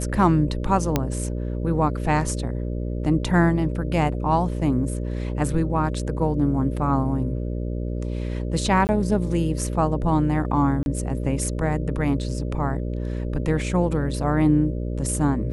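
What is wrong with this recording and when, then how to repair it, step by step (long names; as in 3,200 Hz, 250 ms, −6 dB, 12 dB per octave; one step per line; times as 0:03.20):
mains buzz 60 Hz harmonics 10 −27 dBFS
0:00.96: click −6 dBFS
0:08.87–0:08.89: drop-out 19 ms
0:10.83–0:10.86: drop-out 31 ms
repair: click removal
hum removal 60 Hz, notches 10
repair the gap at 0:08.87, 19 ms
repair the gap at 0:10.83, 31 ms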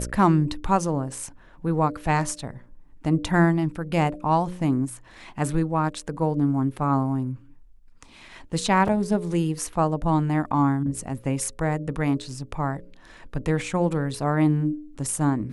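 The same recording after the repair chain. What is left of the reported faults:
none of them is left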